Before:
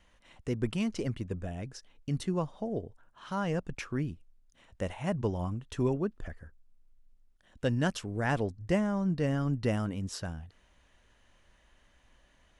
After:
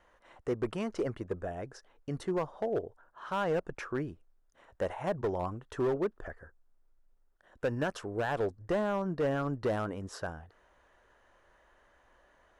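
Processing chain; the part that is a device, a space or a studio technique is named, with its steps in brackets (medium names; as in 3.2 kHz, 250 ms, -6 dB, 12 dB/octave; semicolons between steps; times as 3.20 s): high-order bell 770 Hz +12 dB 2.7 oct; limiter into clipper (peak limiter -13 dBFS, peak gain reduction 6.5 dB; hard clipper -18.5 dBFS, distortion -15 dB); trim -6.5 dB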